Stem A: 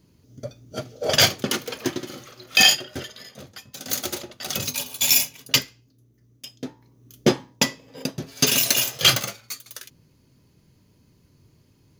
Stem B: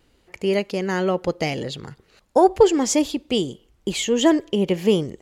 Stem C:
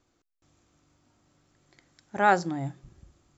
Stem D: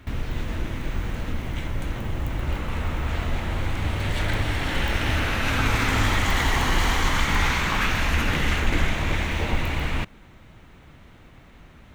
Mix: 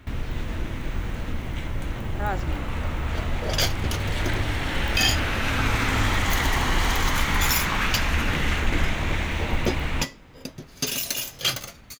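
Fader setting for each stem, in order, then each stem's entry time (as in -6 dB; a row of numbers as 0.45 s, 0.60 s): -8.0 dB, mute, -8.5 dB, -1.0 dB; 2.40 s, mute, 0.00 s, 0.00 s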